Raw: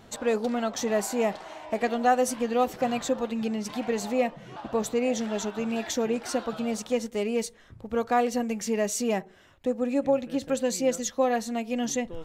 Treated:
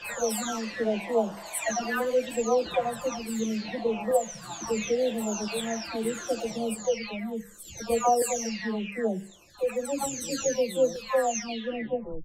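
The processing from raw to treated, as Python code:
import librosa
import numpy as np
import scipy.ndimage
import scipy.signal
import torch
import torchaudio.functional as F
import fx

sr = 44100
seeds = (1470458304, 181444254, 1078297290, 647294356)

y = fx.spec_delay(x, sr, highs='early', ms=718)
y = fx.filter_lfo_notch(y, sr, shape='saw_up', hz=0.73, low_hz=230.0, high_hz=2400.0, q=1.3)
y = fx.hum_notches(y, sr, base_hz=50, count=4)
y = y * 10.0 ** (3.0 / 20.0)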